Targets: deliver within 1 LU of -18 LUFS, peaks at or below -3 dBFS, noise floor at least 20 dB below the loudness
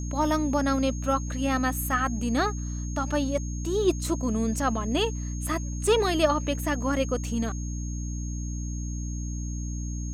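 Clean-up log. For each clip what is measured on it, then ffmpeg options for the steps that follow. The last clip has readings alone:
hum 60 Hz; harmonics up to 300 Hz; hum level -29 dBFS; steady tone 6500 Hz; tone level -42 dBFS; loudness -27.5 LUFS; peak -9.5 dBFS; loudness target -18.0 LUFS
-> -af "bandreject=f=60:t=h:w=6,bandreject=f=120:t=h:w=6,bandreject=f=180:t=h:w=6,bandreject=f=240:t=h:w=6,bandreject=f=300:t=h:w=6"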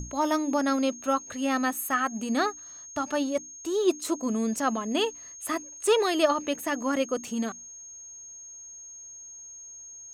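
hum none; steady tone 6500 Hz; tone level -42 dBFS
-> -af "bandreject=f=6.5k:w=30"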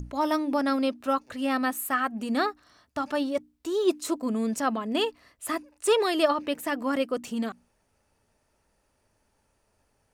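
steady tone none; loudness -28.0 LUFS; peak -11.0 dBFS; loudness target -18.0 LUFS
-> -af "volume=10dB,alimiter=limit=-3dB:level=0:latency=1"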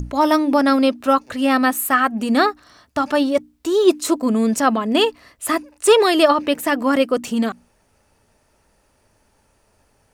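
loudness -18.0 LUFS; peak -3.0 dBFS; noise floor -62 dBFS

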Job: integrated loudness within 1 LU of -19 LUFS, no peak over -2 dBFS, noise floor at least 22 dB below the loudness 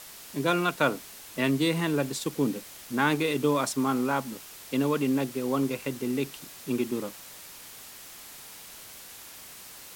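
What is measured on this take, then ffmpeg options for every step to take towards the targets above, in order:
noise floor -46 dBFS; noise floor target -51 dBFS; loudness -28.5 LUFS; peak -10.0 dBFS; loudness target -19.0 LUFS
-> -af "afftdn=nr=6:nf=-46"
-af "volume=9.5dB,alimiter=limit=-2dB:level=0:latency=1"

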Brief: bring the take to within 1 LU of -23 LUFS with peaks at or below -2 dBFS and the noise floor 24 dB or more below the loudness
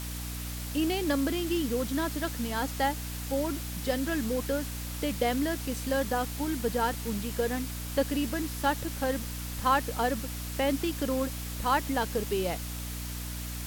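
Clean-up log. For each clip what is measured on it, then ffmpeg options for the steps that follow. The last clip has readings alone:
hum 60 Hz; harmonics up to 300 Hz; hum level -35 dBFS; noise floor -37 dBFS; noise floor target -55 dBFS; loudness -30.5 LUFS; peak -12.0 dBFS; loudness target -23.0 LUFS
-> -af "bandreject=f=60:t=h:w=6,bandreject=f=120:t=h:w=6,bandreject=f=180:t=h:w=6,bandreject=f=240:t=h:w=6,bandreject=f=300:t=h:w=6"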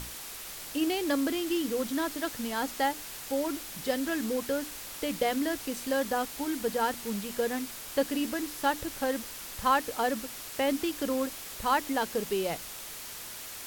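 hum none; noise floor -42 dBFS; noise floor target -56 dBFS
-> -af "afftdn=nr=14:nf=-42"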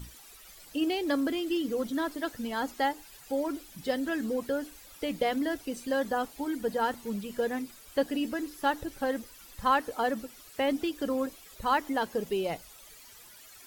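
noise floor -52 dBFS; noise floor target -56 dBFS
-> -af "afftdn=nr=6:nf=-52"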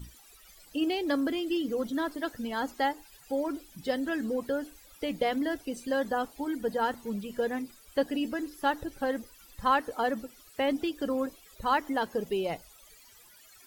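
noise floor -56 dBFS; loudness -31.5 LUFS; peak -13.0 dBFS; loudness target -23.0 LUFS
-> -af "volume=8.5dB"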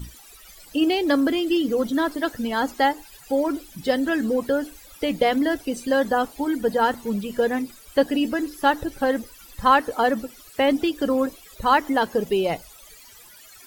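loudness -23.0 LUFS; peak -4.5 dBFS; noise floor -48 dBFS

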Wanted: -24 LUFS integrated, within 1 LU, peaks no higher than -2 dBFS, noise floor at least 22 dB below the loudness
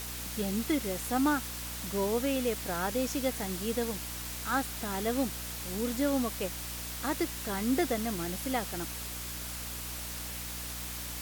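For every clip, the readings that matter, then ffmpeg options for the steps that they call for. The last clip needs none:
hum 60 Hz; harmonics up to 300 Hz; hum level -42 dBFS; noise floor -39 dBFS; noise floor target -55 dBFS; loudness -32.5 LUFS; peak -16.0 dBFS; loudness target -24.0 LUFS
-> -af "bandreject=f=60:t=h:w=4,bandreject=f=120:t=h:w=4,bandreject=f=180:t=h:w=4,bandreject=f=240:t=h:w=4,bandreject=f=300:t=h:w=4"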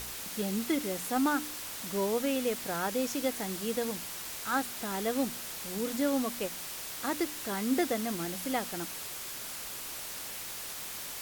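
hum none; noise floor -41 dBFS; noise floor target -55 dBFS
-> -af "afftdn=nr=14:nf=-41"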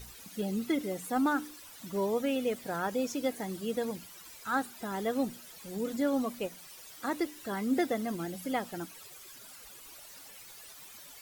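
noise floor -51 dBFS; noise floor target -56 dBFS
-> -af "afftdn=nr=6:nf=-51"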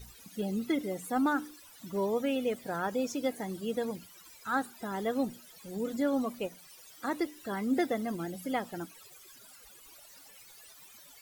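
noise floor -55 dBFS; noise floor target -56 dBFS
-> -af "afftdn=nr=6:nf=-55"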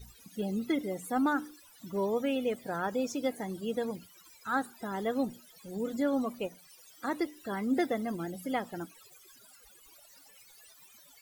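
noise floor -58 dBFS; loudness -33.5 LUFS; peak -17.0 dBFS; loudness target -24.0 LUFS
-> -af "volume=9.5dB"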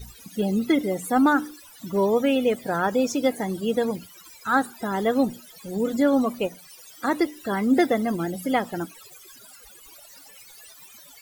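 loudness -24.0 LUFS; peak -7.5 dBFS; noise floor -49 dBFS

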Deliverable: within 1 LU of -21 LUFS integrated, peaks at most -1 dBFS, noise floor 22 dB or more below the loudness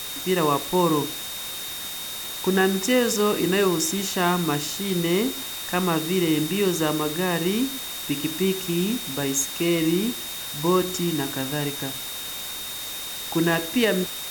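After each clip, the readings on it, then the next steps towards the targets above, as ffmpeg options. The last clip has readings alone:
steady tone 3700 Hz; tone level -35 dBFS; noise floor -33 dBFS; noise floor target -46 dBFS; loudness -24.0 LUFS; peak -8.0 dBFS; loudness target -21.0 LUFS
-> -af "bandreject=f=3.7k:w=30"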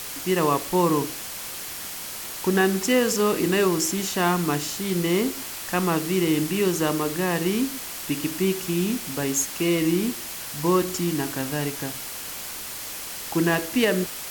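steady tone none; noise floor -35 dBFS; noise floor target -47 dBFS
-> -af "afftdn=nr=12:nf=-35"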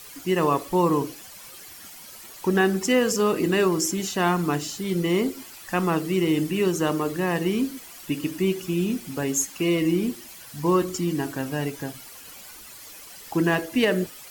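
noise floor -44 dBFS; noise floor target -47 dBFS
-> -af "afftdn=nr=6:nf=-44"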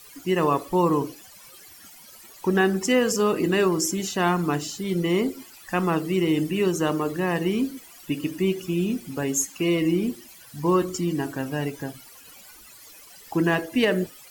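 noise floor -48 dBFS; loudness -24.5 LUFS; peak -8.5 dBFS; loudness target -21.0 LUFS
-> -af "volume=3.5dB"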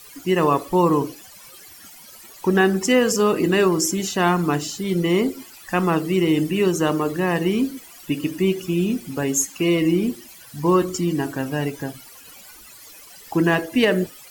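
loudness -21.0 LUFS; peak -5.0 dBFS; noise floor -44 dBFS

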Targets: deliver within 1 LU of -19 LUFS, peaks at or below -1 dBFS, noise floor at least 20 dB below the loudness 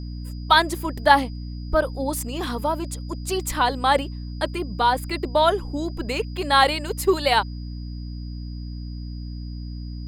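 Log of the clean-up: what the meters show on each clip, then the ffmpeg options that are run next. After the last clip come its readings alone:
hum 60 Hz; harmonics up to 300 Hz; hum level -30 dBFS; steady tone 4900 Hz; tone level -49 dBFS; loudness -22.5 LUFS; peak -2.0 dBFS; loudness target -19.0 LUFS
-> -af "bandreject=f=60:t=h:w=6,bandreject=f=120:t=h:w=6,bandreject=f=180:t=h:w=6,bandreject=f=240:t=h:w=6,bandreject=f=300:t=h:w=6"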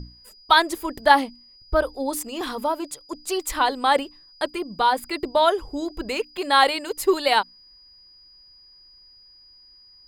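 hum none; steady tone 4900 Hz; tone level -49 dBFS
-> -af "bandreject=f=4.9k:w=30"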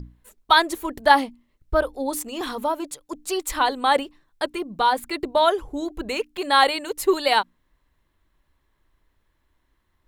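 steady tone none; loudness -22.5 LUFS; peak -2.0 dBFS; loudness target -19.0 LUFS
-> -af "volume=3.5dB,alimiter=limit=-1dB:level=0:latency=1"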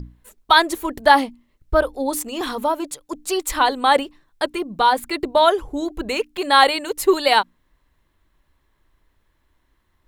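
loudness -19.5 LUFS; peak -1.0 dBFS; noise floor -67 dBFS

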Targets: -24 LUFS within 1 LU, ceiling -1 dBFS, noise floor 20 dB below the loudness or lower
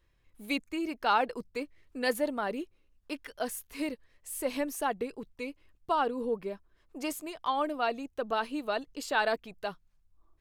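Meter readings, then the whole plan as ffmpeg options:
loudness -33.5 LUFS; peak -15.0 dBFS; loudness target -24.0 LUFS
-> -af "volume=9.5dB"

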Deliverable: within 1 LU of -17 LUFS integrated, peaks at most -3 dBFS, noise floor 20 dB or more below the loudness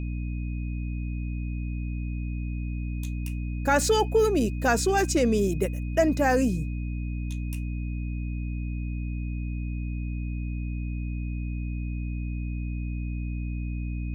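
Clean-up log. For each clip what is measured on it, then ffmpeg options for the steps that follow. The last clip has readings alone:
hum 60 Hz; harmonics up to 300 Hz; hum level -28 dBFS; steady tone 2500 Hz; tone level -48 dBFS; loudness -29.0 LUFS; peak -10.5 dBFS; loudness target -17.0 LUFS
-> -af "bandreject=f=60:t=h:w=6,bandreject=f=120:t=h:w=6,bandreject=f=180:t=h:w=6,bandreject=f=240:t=h:w=6,bandreject=f=300:t=h:w=6"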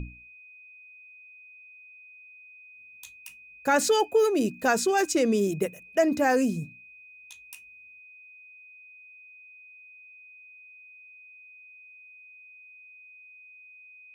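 hum none; steady tone 2500 Hz; tone level -48 dBFS
-> -af "bandreject=f=2.5k:w=30"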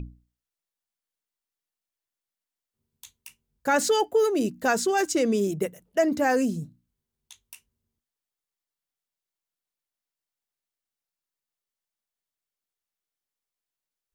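steady tone none; loudness -24.5 LUFS; peak -11.5 dBFS; loudness target -17.0 LUFS
-> -af "volume=7.5dB"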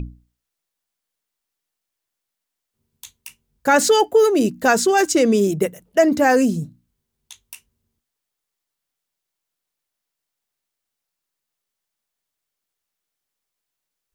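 loudness -17.0 LUFS; peak -4.0 dBFS; noise floor -83 dBFS

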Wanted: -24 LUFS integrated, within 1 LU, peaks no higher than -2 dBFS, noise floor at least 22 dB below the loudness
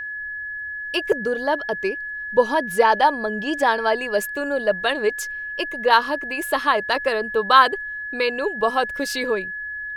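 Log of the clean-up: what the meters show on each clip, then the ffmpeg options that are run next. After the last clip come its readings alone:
steady tone 1700 Hz; tone level -28 dBFS; loudness -21.5 LUFS; peak -1.0 dBFS; loudness target -24.0 LUFS
-> -af "bandreject=f=1.7k:w=30"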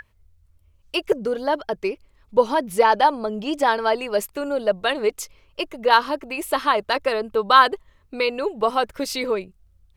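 steady tone none; loudness -21.5 LUFS; peak -1.0 dBFS; loudness target -24.0 LUFS
-> -af "volume=-2.5dB"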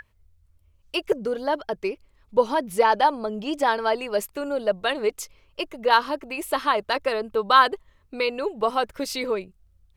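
loudness -24.0 LUFS; peak -3.5 dBFS; noise floor -62 dBFS

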